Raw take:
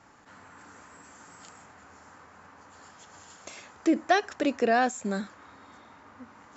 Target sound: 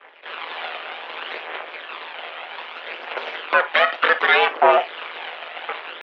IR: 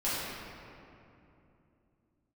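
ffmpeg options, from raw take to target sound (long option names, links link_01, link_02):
-filter_complex "[0:a]agate=range=-33dB:threshold=-47dB:ratio=3:detection=peak,acompressor=threshold=-45dB:ratio=2,asetrate=58866,aresample=44100,atempo=0.749154,aphaser=in_gain=1:out_gain=1:delay=1.9:decay=0.68:speed=0.59:type=triangular,aeval=exprs='abs(val(0))':channel_layout=same,tremolo=f=150:d=0.788,asplit=2[link_01][link_02];[1:a]atrim=start_sample=2205,atrim=end_sample=3087[link_03];[link_02][link_03]afir=irnorm=-1:irlink=0,volume=-13dB[link_04];[link_01][link_04]amix=inputs=2:normalize=0,highpass=frequency=320:width_type=q:width=0.5412,highpass=frequency=320:width_type=q:width=1.307,lowpass=frequency=2800:width_type=q:width=0.5176,lowpass=frequency=2800:width_type=q:width=0.7071,lowpass=frequency=2800:width_type=q:width=1.932,afreqshift=78,asetrate=48000,aresample=44100,alimiter=level_in=32dB:limit=-1dB:release=50:level=0:latency=1,volume=-2.5dB"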